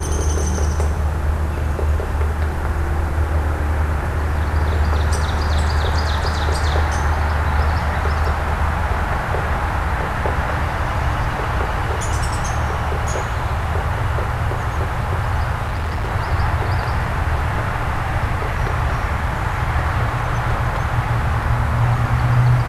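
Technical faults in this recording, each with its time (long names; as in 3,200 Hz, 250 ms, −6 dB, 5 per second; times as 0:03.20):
0:15.64–0:16.12: clipping −18.5 dBFS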